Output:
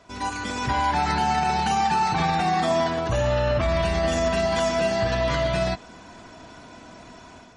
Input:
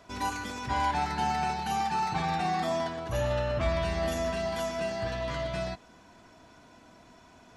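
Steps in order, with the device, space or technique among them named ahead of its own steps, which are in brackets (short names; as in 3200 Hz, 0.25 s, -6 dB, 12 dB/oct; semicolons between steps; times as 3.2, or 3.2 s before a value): low-bitrate web radio (AGC gain up to 9 dB; limiter -16 dBFS, peak gain reduction 7.5 dB; gain +2 dB; MP3 40 kbps 48000 Hz)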